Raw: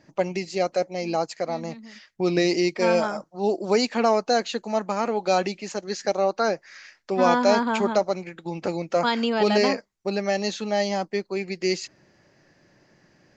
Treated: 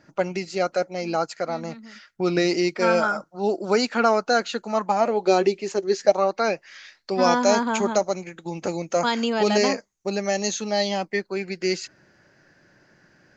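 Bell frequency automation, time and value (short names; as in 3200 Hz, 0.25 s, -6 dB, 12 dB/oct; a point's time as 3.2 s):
bell +13.5 dB 0.23 oct
4.68 s 1400 Hz
5.27 s 390 Hz
5.99 s 390 Hz
6.35 s 2100 Hz
7.46 s 6500 Hz
10.59 s 6500 Hz
11.27 s 1500 Hz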